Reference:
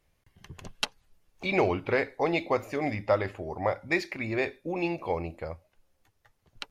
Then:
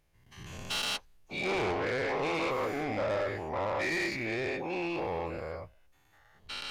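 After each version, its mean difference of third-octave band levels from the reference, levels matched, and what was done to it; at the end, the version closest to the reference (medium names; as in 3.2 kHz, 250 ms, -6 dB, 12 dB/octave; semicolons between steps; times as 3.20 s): 8.5 dB: every event in the spectrogram widened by 240 ms; saturation -20 dBFS, distortion -10 dB; trim -7 dB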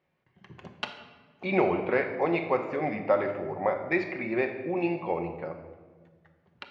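5.5 dB: band-pass 150–2400 Hz; simulated room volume 1200 m³, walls mixed, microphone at 1 m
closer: second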